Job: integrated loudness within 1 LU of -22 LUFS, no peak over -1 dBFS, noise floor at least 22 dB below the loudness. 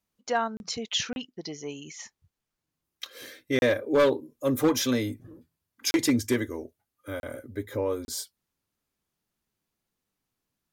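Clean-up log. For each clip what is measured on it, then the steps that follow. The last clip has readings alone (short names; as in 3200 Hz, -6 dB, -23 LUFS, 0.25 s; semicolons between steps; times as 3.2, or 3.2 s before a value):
clipped 0.4%; flat tops at -16.0 dBFS; dropouts 6; longest dropout 31 ms; loudness -28.0 LUFS; peak -16.0 dBFS; loudness target -22.0 LUFS
-> clip repair -16 dBFS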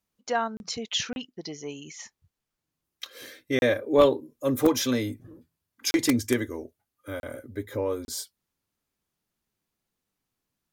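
clipped 0.0%; dropouts 6; longest dropout 31 ms
-> interpolate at 0.57/1.13/3.59/5.91/7.2/8.05, 31 ms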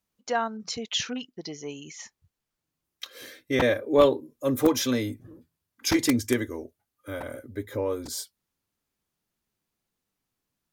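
dropouts 0; loudness -27.0 LUFS; peak -7.0 dBFS; loudness target -22.0 LUFS
-> gain +5 dB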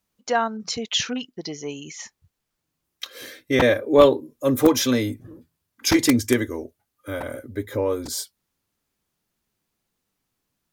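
loudness -22.0 LUFS; peak -2.0 dBFS; noise floor -80 dBFS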